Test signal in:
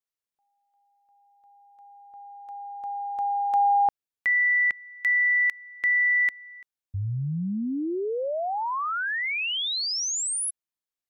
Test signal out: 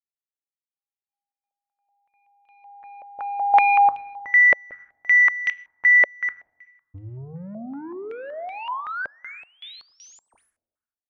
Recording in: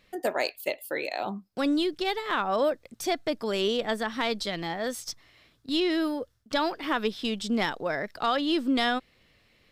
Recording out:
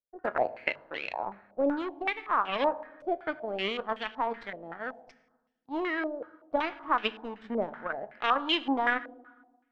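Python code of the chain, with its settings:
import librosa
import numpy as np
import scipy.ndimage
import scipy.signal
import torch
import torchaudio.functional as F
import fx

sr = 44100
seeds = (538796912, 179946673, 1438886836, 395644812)

y = fx.power_curve(x, sr, exponent=2.0)
y = fx.hum_notches(y, sr, base_hz=50, count=3)
y = fx.rev_fdn(y, sr, rt60_s=1.2, lf_ratio=1.25, hf_ratio=0.8, size_ms=64.0, drr_db=13.0)
y = fx.filter_held_lowpass(y, sr, hz=5.3, low_hz=580.0, high_hz=2900.0)
y = y * librosa.db_to_amplitude(1.5)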